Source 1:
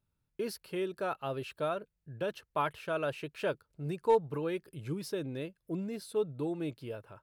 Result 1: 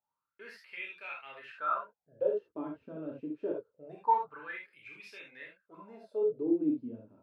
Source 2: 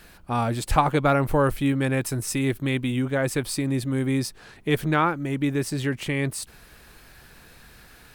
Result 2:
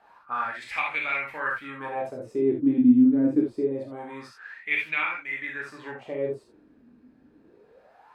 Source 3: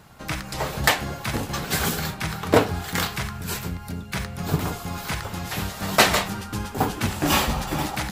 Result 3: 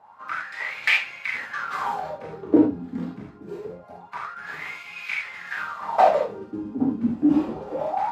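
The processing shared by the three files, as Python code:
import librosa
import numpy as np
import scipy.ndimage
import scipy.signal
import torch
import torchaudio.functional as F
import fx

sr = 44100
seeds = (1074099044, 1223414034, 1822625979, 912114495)

y = fx.peak_eq(x, sr, hz=9200.0, db=-2.5, octaves=0.27)
y = fx.rev_gated(y, sr, seeds[0], gate_ms=100, shape='flat', drr_db=-1.5)
y = fx.wah_lfo(y, sr, hz=0.25, low_hz=250.0, high_hz=2400.0, q=8.0)
y = y * 10.0 ** (8.5 / 20.0)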